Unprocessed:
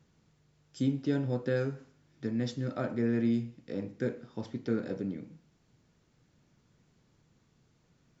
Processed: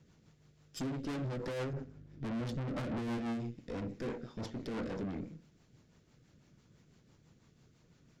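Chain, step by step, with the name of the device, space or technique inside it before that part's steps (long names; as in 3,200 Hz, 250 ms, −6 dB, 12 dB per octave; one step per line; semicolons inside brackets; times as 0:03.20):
0:01.73–0:03.18: spectral tilt −3 dB per octave
overdriven rotary cabinet (tube saturation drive 43 dB, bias 0.75; rotating-speaker cabinet horn 6 Hz)
level +9 dB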